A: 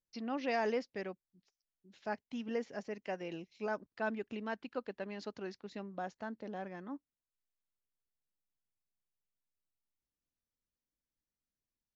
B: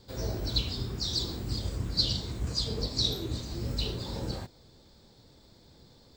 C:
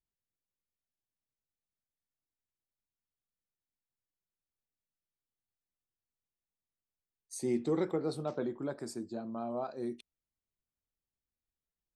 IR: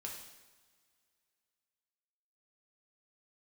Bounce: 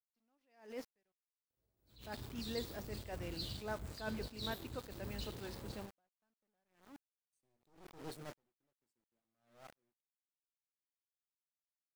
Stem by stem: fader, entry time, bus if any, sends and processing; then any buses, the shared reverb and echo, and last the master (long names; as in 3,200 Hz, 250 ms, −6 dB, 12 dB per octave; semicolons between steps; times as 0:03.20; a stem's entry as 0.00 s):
−5.0 dB, 0.00 s, send −12.5 dB, no processing
−13.5 dB, 1.40 s, send −16 dB, parametric band 5,700 Hz −12.5 dB 0.69 octaves
−9.0 dB, 0.00 s, send −16.5 dB, wavefolder on the positive side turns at −35 dBFS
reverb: on, pre-delay 3 ms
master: high-shelf EQ 8,100 Hz +10.5 dB; centre clipping without the shift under −48 dBFS; level that may rise only so fast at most 120 dB per second